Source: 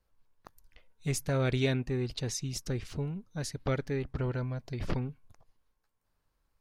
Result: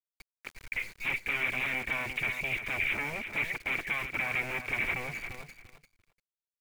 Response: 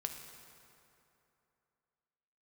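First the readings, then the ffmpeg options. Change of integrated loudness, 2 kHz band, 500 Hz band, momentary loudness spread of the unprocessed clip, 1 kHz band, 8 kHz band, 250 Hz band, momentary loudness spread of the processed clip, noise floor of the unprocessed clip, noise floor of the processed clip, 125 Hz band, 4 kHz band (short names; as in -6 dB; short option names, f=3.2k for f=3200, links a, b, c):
+2.5 dB, +14.5 dB, -8.5 dB, 8 LU, +4.5 dB, -9.5 dB, -10.5 dB, 12 LU, -78 dBFS, under -85 dBFS, -14.0 dB, +1.0 dB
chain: -filter_complex "[0:a]agate=range=-33dB:threshold=-58dB:ratio=3:detection=peak,firequalizer=gain_entry='entry(140,0);entry(370,10);entry(600,-1);entry(1500,10)':delay=0.05:min_phase=1,acompressor=threshold=-38dB:ratio=20,aresample=8000,aeval=exprs='0.0282*sin(PI/2*5.62*val(0)/0.0282)':c=same,aresample=44100,lowpass=f=2.3k:t=q:w=14,aeval=exprs='val(0)*gte(abs(val(0)),0.0141)':c=same,asplit=2[a][b];[b]aecho=0:1:346|692:0.355|0.0568[c];[a][c]amix=inputs=2:normalize=0,volume=-6dB"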